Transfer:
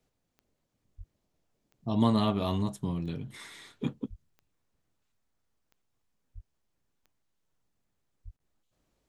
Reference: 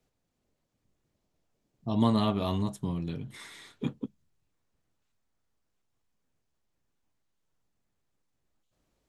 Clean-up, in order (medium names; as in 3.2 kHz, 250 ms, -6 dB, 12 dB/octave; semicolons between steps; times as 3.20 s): de-click; de-plosive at 0.97/4.09/6.34/8.24 s; interpolate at 8.37 s, 28 ms